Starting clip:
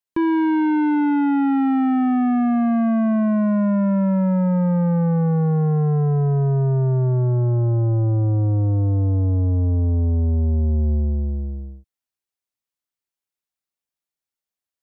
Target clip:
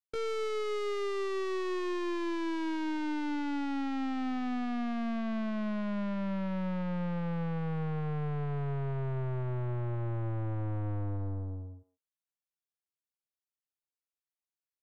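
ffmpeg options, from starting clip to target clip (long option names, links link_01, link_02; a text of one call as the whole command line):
ffmpeg -i in.wav -filter_complex "[0:a]aeval=exprs='(tanh(17.8*val(0)+0.5)-tanh(0.5))/17.8':channel_layout=same,asplit=2[link_01][link_02];[link_02]adelay=150,highpass=300,lowpass=3400,asoftclip=type=hard:threshold=-30.5dB,volume=-13dB[link_03];[link_01][link_03]amix=inputs=2:normalize=0,asetrate=60591,aresample=44100,atempo=0.727827,volume=-8dB" out.wav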